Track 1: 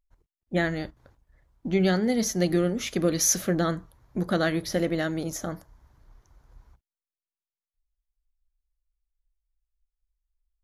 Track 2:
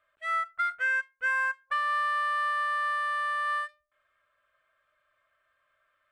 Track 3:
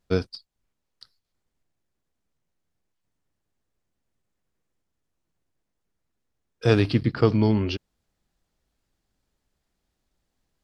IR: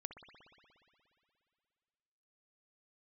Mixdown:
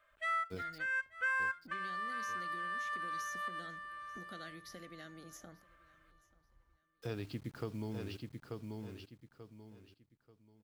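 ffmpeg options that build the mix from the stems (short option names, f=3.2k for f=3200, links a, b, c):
-filter_complex "[0:a]acrossover=split=290|1700[a][b][c];[a]acompressor=threshold=-39dB:ratio=4[d];[b]acompressor=threshold=-38dB:ratio=4[e];[c]acompressor=threshold=-32dB:ratio=4[f];[d][e][f]amix=inputs=3:normalize=0,volume=-17dB,asplit=3[g][h][i];[h]volume=-22.5dB[j];[1:a]volume=2.5dB,asplit=2[k][l];[l]volume=-21.5dB[m];[2:a]acrusher=bits=6:mix=0:aa=0.000001,adelay=400,volume=-17.5dB,asplit=2[n][o];[o]volume=-6.5dB[p];[i]apad=whole_len=269483[q];[k][q]sidechaincompress=threshold=-59dB:ratio=8:attack=16:release=234[r];[j][m][p]amix=inputs=3:normalize=0,aecho=0:1:886|1772|2658|3544:1|0.28|0.0784|0.022[s];[g][r][n][s]amix=inputs=4:normalize=0,acompressor=threshold=-39dB:ratio=2"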